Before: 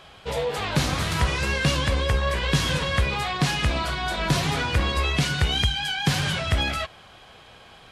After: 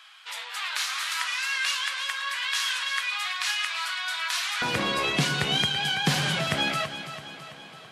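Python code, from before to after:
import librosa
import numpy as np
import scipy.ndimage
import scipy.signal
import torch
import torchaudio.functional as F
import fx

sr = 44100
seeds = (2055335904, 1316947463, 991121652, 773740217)

y = fx.highpass(x, sr, hz=fx.steps((0.0, 1200.0), (4.62, 150.0)), slope=24)
y = fx.echo_feedback(y, sr, ms=332, feedback_pct=53, wet_db=-11.5)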